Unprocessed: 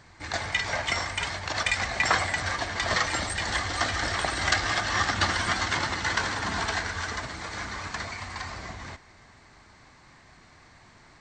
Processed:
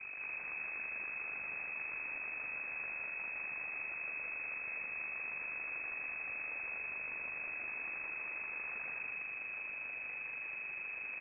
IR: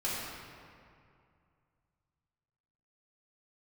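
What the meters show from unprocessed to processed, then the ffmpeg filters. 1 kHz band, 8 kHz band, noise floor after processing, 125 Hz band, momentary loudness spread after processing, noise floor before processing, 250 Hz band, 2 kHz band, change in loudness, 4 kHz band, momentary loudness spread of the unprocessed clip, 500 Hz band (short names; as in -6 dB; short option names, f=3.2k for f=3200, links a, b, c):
-23.0 dB, under -40 dB, -45 dBFS, under -30 dB, 1 LU, -55 dBFS, -23.5 dB, -10.0 dB, -12.0 dB, under -40 dB, 11 LU, -20.5 dB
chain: -filter_complex "[0:a]highpass=820,acompressor=threshold=-41dB:ratio=4,aeval=exprs='abs(val(0))':c=same,aeval=exprs='val(0)+0.00178*(sin(2*PI*50*n/s)+sin(2*PI*2*50*n/s)/2+sin(2*PI*3*50*n/s)/3+sin(2*PI*4*50*n/s)/4+sin(2*PI*5*50*n/s)/5)':c=same,aeval=exprs='val(0)*sin(2*PI*75*n/s)':c=same,aeval=exprs='(tanh(631*val(0)+0.35)-tanh(0.35))/631':c=same,asplit=2[a][b];[b]aecho=0:1:166.2|256.6:0.794|0.562[c];[a][c]amix=inputs=2:normalize=0,lowpass=f=2.2k:t=q:w=0.5098,lowpass=f=2.2k:t=q:w=0.6013,lowpass=f=2.2k:t=q:w=0.9,lowpass=f=2.2k:t=q:w=2.563,afreqshift=-2600,volume=15.5dB"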